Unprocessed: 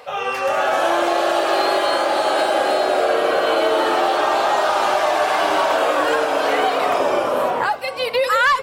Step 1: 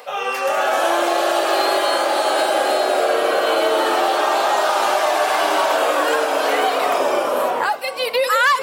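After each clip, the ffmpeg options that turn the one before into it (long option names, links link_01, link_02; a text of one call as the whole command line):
ffmpeg -i in.wav -af "highpass=230,highshelf=frequency=7500:gain=9.5,areverse,acompressor=mode=upward:threshold=-23dB:ratio=2.5,areverse" out.wav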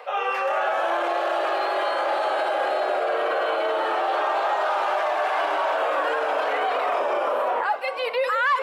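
ffmpeg -i in.wav -filter_complex "[0:a]highshelf=frequency=8800:gain=-7,alimiter=limit=-14.5dB:level=0:latency=1:release=32,acrossover=split=370 3000:gain=0.112 1 0.178[link_01][link_02][link_03];[link_01][link_02][link_03]amix=inputs=3:normalize=0" out.wav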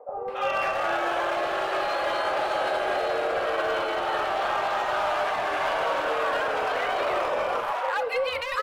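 ffmpeg -i in.wav -filter_complex "[0:a]asoftclip=type=hard:threshold=-19.5dB,acrossover=split=750[link_01][link_02];[link_02]adelay=280[link_03];[link_01][link_03]amix=inputs=2:normalize=0" out.wav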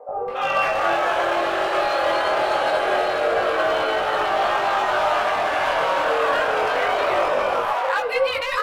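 ffmpeg -i in.wav -af "flanger=delay=18.5:depth=5.9:speed=0.25,volume=8.5dB" out.wav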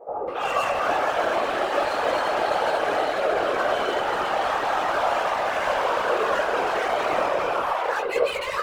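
ffmpeg -i in.wav -filter_complex "[0:a]acrossover=split=660|1300[link_01][link_02][link_03];[link_03]volume=27.5dB,asoftclip=hard,volume=-27.5dB[link_04];[link_01][link_02][link_04]amix=inputs=3:normalize=0,afftfilt=real='hypot(re,im)*cos(2*PI*random(0))':imag='hypot(re,im)*sin(2*PI*random(1))':win_size=512:overlap=0.75,volume=3.5dB" out.wav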